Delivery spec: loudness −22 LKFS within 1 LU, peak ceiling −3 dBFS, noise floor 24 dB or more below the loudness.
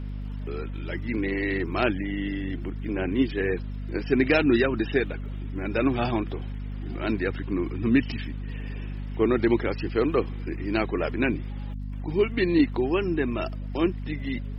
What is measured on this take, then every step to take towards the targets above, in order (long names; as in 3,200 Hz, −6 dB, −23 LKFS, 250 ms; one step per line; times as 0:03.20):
crackle rate 44 per second; mains hum 50 Hz; hum harmonics up to 250 Hz; level of the hum −30 dBFS; integrated loudness −27.0 LKFS; sample peak −9.0 dBFS; target loudness −22.0 LKFS
→ click removal
mains-hum notches 50/100/150/200/250 Hz
level +5 dB